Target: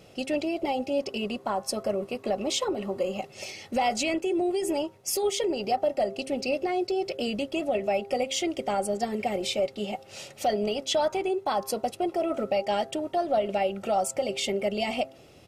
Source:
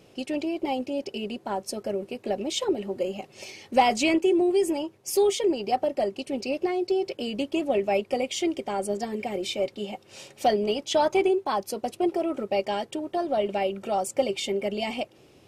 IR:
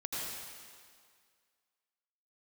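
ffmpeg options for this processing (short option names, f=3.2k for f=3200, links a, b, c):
-filter_complex "[0:a]asettb=1/sr,asplit=3[a][b][c];[a]atrim=end=0.994[d];[b]atrim=start=0.99:end=3.2,asetpts=PTS-STARTPTS,afade=t=in:d=0.004:c=qsin,afade=t=out:st=2.206:d=0.004:c=qsin,equalizer=f=1.1k:t=o:w=0.23:g=13.5[e];[c]atrim=start=3.196[f];[d][e]acrossfade=d=0.004:c1=hsin:c2=qsin[g];[g][f]acrossfade=d=0.004:c1=qsin:c2=hsin,alimiter=limit=-20dB:level=0:latency=1:release=155,aecho=1:1:1.5:0.33,bandreject=f=133.3:t=h:w=4,bandreject=f=266.6:t=h:w=4,bandreject=f=399.9:t=h:w=4,bandreject=f=533.2:t=h:w=4,bandreject=f=666.5:t=h:w=4,bandreject=f=799.8:t=h:w=4,bandreject=f=933.1:t=h:w=4,bandreject=f=1.0664k:t=h:w=4,bandreject=f=1.1997k:t=h:w=4,bandreject=f=1.333k:t=h:w=4,bandreject=f=1.4663k:t=h:w=4,bandreject=f=1.5996k:t=h:w=4,bandreject=f=1.7329k:t=h:w=4,volume=2.5dB"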